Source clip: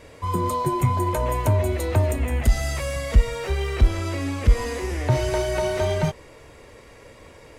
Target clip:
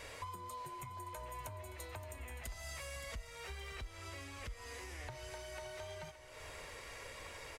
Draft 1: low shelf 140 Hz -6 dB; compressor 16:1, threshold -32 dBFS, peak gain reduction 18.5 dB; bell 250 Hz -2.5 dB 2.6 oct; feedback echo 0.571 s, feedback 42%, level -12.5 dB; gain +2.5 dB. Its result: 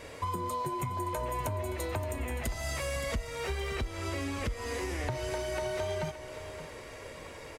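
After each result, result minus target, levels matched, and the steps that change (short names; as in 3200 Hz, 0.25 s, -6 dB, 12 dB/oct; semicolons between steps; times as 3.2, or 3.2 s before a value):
compressor: peak gain reduction -9 dB; 250 Hz band +6.5 dB
change: compressor 16:1, threshold -41.5 dBFS, peak gain reduction 27.5 dB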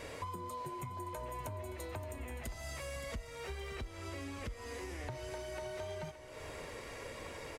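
250 Hz band +6.5 dB
change: bell 250 Hz -13.5 dB 2.6 oct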